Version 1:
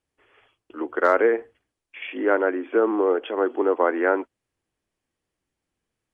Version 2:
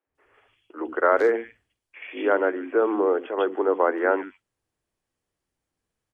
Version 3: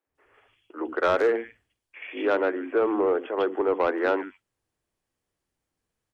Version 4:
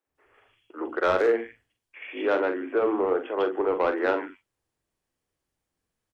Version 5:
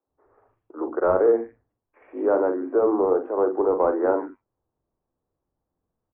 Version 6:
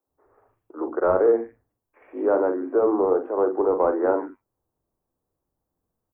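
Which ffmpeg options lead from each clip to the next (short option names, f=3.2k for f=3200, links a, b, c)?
-filter_complex "[0:a]acrossover=split=260|2500[a][b][c];[a]adelay=70[d];[c]adelay=150[e];[d][b][e]amix=inputs=3:normalize=0"
-af "asoftclip=type=tanh:threshold=-14.5dB"
-filter_complex "[0:a]asplit=2[a][b];[b]adelay=43,volume=-8dB[c];[a][c]amix=inputs=2:normalize=0,volume=-1dB"
-af "lowpass=f=1.1k:w=0.5412,lowpass=f=1.1k:w=1.3066,volume=4dB"
-af "crystalizer=i=1:c=0"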